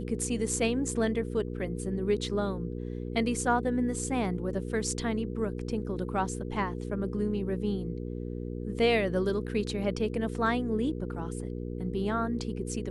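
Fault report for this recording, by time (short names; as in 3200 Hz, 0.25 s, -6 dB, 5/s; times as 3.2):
hum 60 Hz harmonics 8 -36 dBFS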